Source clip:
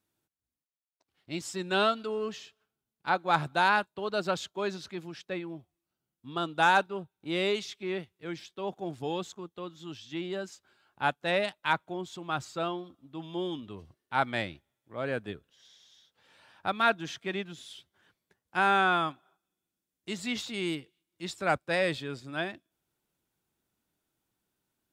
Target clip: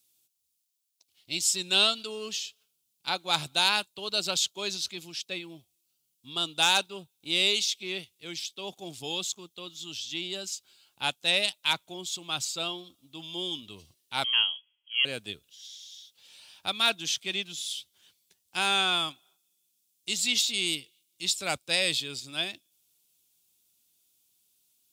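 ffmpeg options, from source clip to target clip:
-filter_complex "[0:a]asettb=1/sr,asplit=3[s0][s1][s2];[s0]atrim=end=14.244[s3];[s1]atrim=start=14.24:end=15.05,asetpts=PTS-STARTPTS,afade=t=in:d=0.004:c=qsin,afade=t=out:st=0.806:d=0.004:c=qsin,lowpass=f=2900:t=q:w=0.5098,lowpass=f=2900:t=q:w=0.6013,lowpass=f=2900:t=q:w=0.9,lowpass=f=2900:t=q:w=2.563,afreqshift=-3400[s4];[s2]atrim=start=15.046[s5];[s3][s4]acrossfade=d=0.004:c1=hsin:c2=qsin[s6];[s6][s5]acrossfade=d=0.004:c1=qsin:c2=hsin,aexciter=amount=10.5:drive=2.2:freq=2500,volume=0.531"

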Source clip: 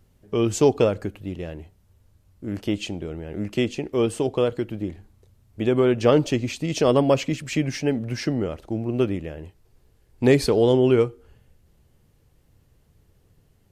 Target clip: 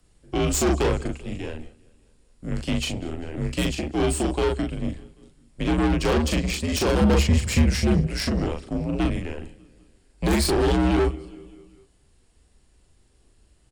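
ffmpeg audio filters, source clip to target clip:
-filter_complex "[0:a]asplit=2[s0][s1];[s1]adelay=39,volume=0.708[s2];[s0][s2]amix=inputs=2:normalize=0,asplit=2[s3][s4];[s4]aecho=0:1:197|394|591|788:0.0631|0.0372|0.022|0.013[s5];[s3][s5]amix=inputs=2:normalize=0,aresample=22050,aresample=44100,acrossover=split=370|1500[s6][s7][s8];[s8]aeval=exprs='0.075*(abs(mod(val(0)/0.075+3,4)-2)-1)':c=same[s9];[s6][s7][s9]amix=inputs=3:normalize=0,highshelf=f=4700:g=10.5,bandreject=f=6200:w=8,aeval=exprs='(tanh(11.2*val(0)+0.7)-tanh(0.7))/11.2':c=same,afreqshift=-71,asettb=1/sr,asplit=3[s10][s11][s12];[s10]atrim=end=7.014[s13];[s11]atrim=start=7.01:end=8.07,asetpts=PTS-STARTPTS,afade=t=in:d=0.004:c=qsin,afade=t=out:st=1.056:d=0.004:c=qsin,equalizer=f=110:t=o:w=1.1:g=15[s14];[s12]atrim=start=8.066[s15];[s13][s14]acrossfade=d=0.004:c1=hsin:c2=qsin[s16];[s16][s15]acrossfade=d=0.004:c1=qsin:c2=hsin,volume=1.41"

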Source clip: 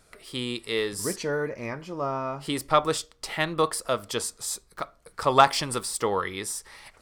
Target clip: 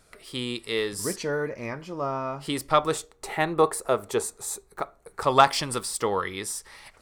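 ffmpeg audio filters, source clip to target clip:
-filter_complex "[0:a]asettb=1/sr,asplit=3[s0][s1][s2];[s0]atrim=end=2.924[s3];[s1]atrim=start=2.92:end=5.23,asetpts=PTS-STARTPTS,afade=t=in:d=0.004:c=qsin,afade=t=out:st=2.306:d=0.004:c=qsin,equalizer=f=400:t=o:w=0.33:g=11,equalizer=f=800:t=o:w=0.33:g=8,equalizer=f=3150:t=o:w=0.33:g=-8,equalizer=f=5000:t=o:w=0.33:g=-11[s4];[s2]atrim=start=5.226[s5];[s3][s4]acrossfade=d=0.004:c1=hsin:c2=qsin[s6];[s6][s5]acrossfade=d=0.004:c1=qsin:c2=hsin"

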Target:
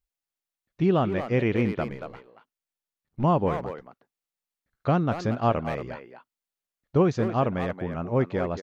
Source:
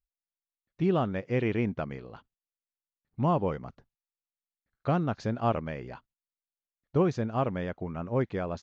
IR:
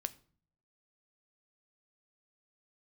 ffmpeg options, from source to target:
-filter_complex "[0:a]asettb=1/sr,asplit=3[s0][s1][s2];[s0]atrim=end=1.904[s3];[s1]atrim=start=1.9:end=3.24,asetpts=PTS-STARTPTS,afade=t=in:d=0.004:c=qsin,afade=t=out:st=1.336:d=0.004:c=qsin,aeval=exprs='if(lt(val(0),0),0.447*val(0),val(0))':c=same[s4];[s2]atrim=start=3.236[s5];[s3][s4]acrossfade=d=0.004:c1=hsin:c2=qsin[s6];[s6][s5]acrossfade=d=0.004:c1=qsin:c2=hsin,asplit=2[s7][s8];[s8]adelay=230,highpass=300,lowpass=3400,asoftclip=type=hard:threshold=0.0668,volume=0.447[s9];[s7][s9]amix=inputs=2:normalize=0,volume=1.58"

